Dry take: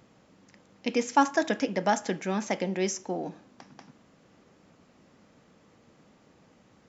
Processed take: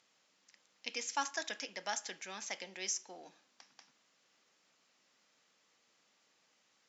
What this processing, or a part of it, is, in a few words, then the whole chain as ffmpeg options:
piezo pickup straight into a mixer: -af "lowpass=5.7k,aderivative,volume=3.5dB"

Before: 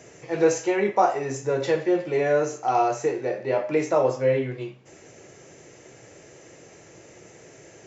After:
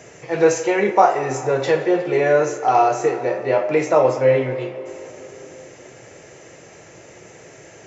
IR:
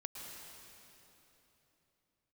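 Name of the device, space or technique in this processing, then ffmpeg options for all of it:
filtered reverb send: -filter_complex "[0:a]asplit=2[a][b];[b]highpass=f=290:w=0.5412,highpass=f=290:w=1.3066,lowpass=3.6k[c];[1:a]atrim=start_sample=2205[d];[c][d]afir=irnorm=-1:irlink=0,volume=-5.5dB[e];[a][e]amix=inputs=2:normalize=0,volume=4.5dB"

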